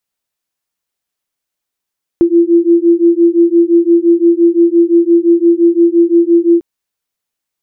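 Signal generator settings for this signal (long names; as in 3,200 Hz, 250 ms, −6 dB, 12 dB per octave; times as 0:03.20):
two tones that beat 337 Hz, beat 5.8 Hz, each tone −9 dBFS 4.40 s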